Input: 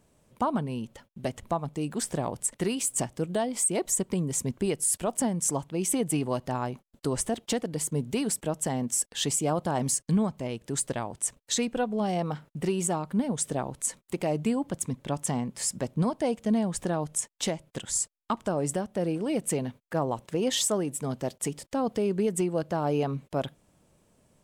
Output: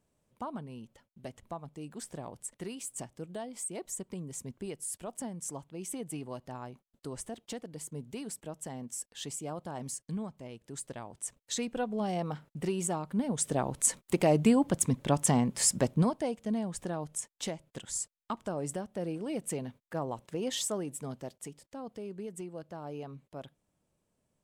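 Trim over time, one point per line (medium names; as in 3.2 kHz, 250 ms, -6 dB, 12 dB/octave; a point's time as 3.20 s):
10.80 s -12 dB
11.89 s -4.5 dB
13.15 s -4.5 dB
13.89 s +3.5 dB
15.86 s +3.5 dB
16.33 s -7 dB
21.00 s -7 dB
21.59 s -14.5 dB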